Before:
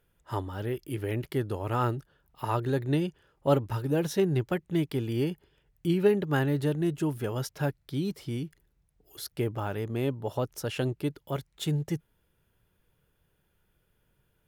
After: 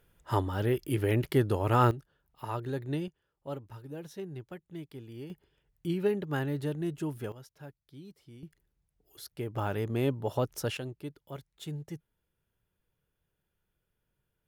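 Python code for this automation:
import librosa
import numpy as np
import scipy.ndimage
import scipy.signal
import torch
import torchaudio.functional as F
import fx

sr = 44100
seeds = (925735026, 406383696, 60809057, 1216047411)

y = fx.gain(x, sr, db=fx.steps((0.0, 4.0), (1.91, -6.5), (3.08, -15.0), (5.3, -5.5), (7.32, -18.0), (8.43, -7.0), (9.55, 0.5), (10.77, -10.0)))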